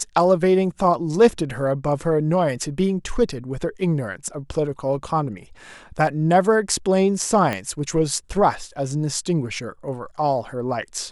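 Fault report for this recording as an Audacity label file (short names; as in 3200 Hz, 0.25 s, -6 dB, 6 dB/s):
7.530000	7.530000	pop -11 dBFS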